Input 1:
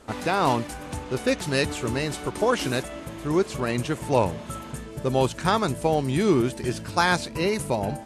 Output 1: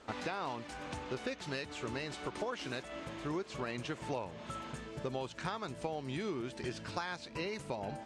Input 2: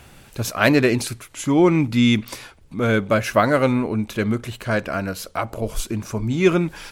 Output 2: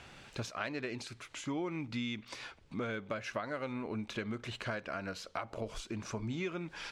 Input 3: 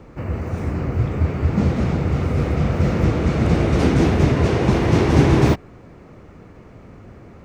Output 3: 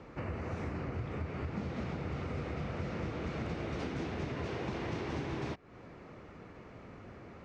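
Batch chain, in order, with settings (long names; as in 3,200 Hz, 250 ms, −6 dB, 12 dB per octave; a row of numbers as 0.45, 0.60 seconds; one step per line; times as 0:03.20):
spectral tilt +2 dB per octave
downward compressor 10 to 1, threshold −30 dBFS
high-frequency loss of the air 130 metres
level −4 dB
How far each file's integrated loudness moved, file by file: −15.0, −19.0, −20.0 LU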